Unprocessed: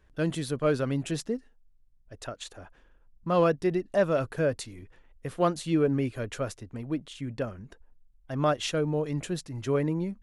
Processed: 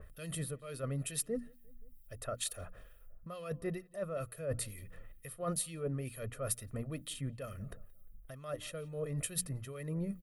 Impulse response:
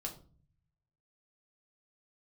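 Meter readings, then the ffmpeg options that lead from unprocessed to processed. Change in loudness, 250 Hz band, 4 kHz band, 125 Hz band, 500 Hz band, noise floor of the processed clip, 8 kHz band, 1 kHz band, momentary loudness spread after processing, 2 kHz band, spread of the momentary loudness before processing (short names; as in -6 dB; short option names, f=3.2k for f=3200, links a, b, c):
-10.5 dB, -13.0 dB, -7.0 dB, -8.0 dB, -13.0 dB, -59 dBFS, +3.5 dB, -15.5 dB, 14 LU, -12.0 dB, 15 LU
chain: -filter_complex "[0:a]bandreject=f=60:t=h:w=6,bandreject=f=120:t=h:w=6,bandreject=f=180:t=h:w=6,bandreject=f=240:t=h:w=6,bandreject=f=300:t=h:w=6,aecho=1:1:1.6:0.65,areverse,acompressor=threshold=-35dB:ratio=16,areverse,asplit=2[a][b];[b]adelay=175,lowpass=f=1.7k:p=1,volume=-23dB,asplit=2[c][d];[d]adelay=175,lowpass=f=1.7k:p=1,volume=0.51,asplit=2[e][f];[f]adelay=175,lowpass=f=1.7k:p=1,volume=0.51[g];[a][c][e][g]amix=inputs=4:normalize=0,aexciter=amount=7.4:drive=6.6:freq=9k,equalizer=f=790:w=4.5:g=-11.5,acompressor=mode=upward:threshold=-44dB:ratio=2.5,acrossover=split=1900[h][i];[h]aeval=exprs='val(0)*(1-0.7/2+0.7/2*cos(2*PI*2.2*n/s))':c=same[j];[i]aeval=exprs='val(0)*(1-0.7/2-0.7/2*cos(2*PI*2.2*n/s))':c=same[k];[j][k]amix=inputs=2:normalize=0,adynamicequalizer=threshold=0.00126:dfrequency=2400:dqfactor=0.7:tfrequency=2400:tqfactor=0.7:attack=5:release=100:ratio=0.375:range=1.5:mode=cutabove:tftype=highshelf,volume=3dB"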